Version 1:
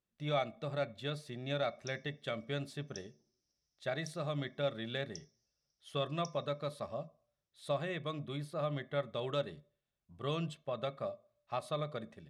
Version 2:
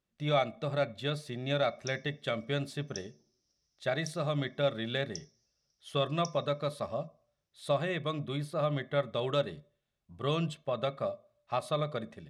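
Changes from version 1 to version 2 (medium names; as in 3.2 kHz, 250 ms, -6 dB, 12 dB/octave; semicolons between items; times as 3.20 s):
speech +5.5 dB; background +6.5 dB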